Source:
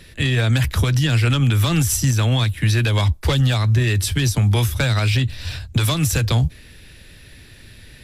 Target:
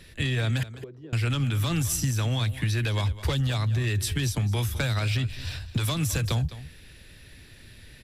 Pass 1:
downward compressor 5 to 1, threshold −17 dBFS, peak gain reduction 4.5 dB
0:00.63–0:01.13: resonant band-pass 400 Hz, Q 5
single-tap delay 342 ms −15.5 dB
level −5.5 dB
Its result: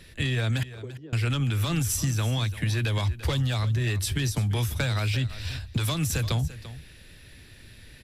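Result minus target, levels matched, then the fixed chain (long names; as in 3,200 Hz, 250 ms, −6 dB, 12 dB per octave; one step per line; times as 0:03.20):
echo 134 ms late
downward compressor 5 to 1, threshold −17 dBFS, peak gain reduction 4.5 dB
0:00.63–0:01.13: resonant band-pass 400 Hz, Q 5
single-tap delay 208 ms −15.5 dB
level −5.5 dB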